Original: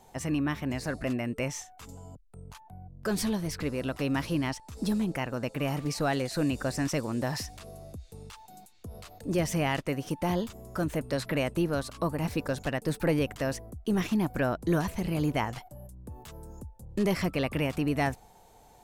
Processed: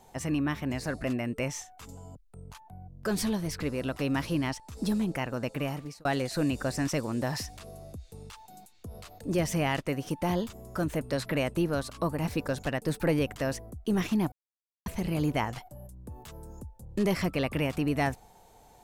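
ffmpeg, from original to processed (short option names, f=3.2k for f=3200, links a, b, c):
-filter_complex "[0:a]asplit=4[a][b][c][d];[a]atrim=end=6.05,asetpts=PTS-STARTPTS,afade=t=out:st=5.56:d=0.49[e];[b]atrim=start=6.05:end=14.32,asetpts=PTS-STARTPTS,afade=t=in:d=0.004:c=hsin,afade=t=out:st=8.266:d=0.004:c=hsin[f];[c]atrim=start=14.32:end=14.86,asetpts=PTS-STARTPTS,volume=0[g];[d]atrim=start=14.86,asetpts=PTS-STARTPTS,afade=t=in:d=0.004:c=hsin[h];[e][f][g][h]concat=n=4:v=0:a=1"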